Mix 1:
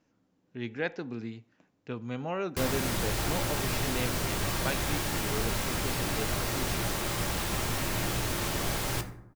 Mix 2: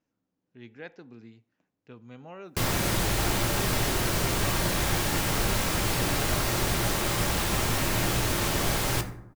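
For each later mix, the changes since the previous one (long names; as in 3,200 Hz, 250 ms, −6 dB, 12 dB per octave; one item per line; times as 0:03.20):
speech −10.5 dB
background +4.5 dB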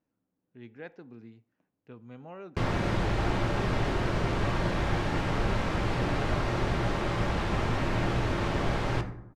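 background: add Bessel low-pass filter 3,900 Hz, order 2
master: add high-shelf EQ 3,100 Hz −11.5 dB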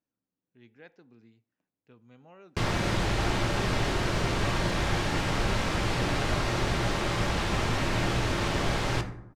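speech −9.0 dB
master: add high-shelf EQ 3,100 Hz +11.5 dB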